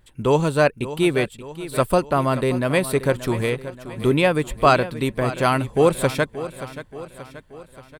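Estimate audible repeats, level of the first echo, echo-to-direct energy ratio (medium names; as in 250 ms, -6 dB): 4, -14.0 dB, -12.5 dB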